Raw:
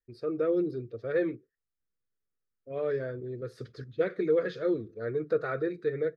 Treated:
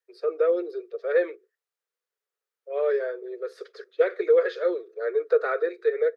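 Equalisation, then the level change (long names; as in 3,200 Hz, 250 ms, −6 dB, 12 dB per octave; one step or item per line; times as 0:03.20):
Butterworth high-pass 390 Hz 72 dB per octave
high-shelf EQ 4,300 Hz −6 dB
+7.0 dB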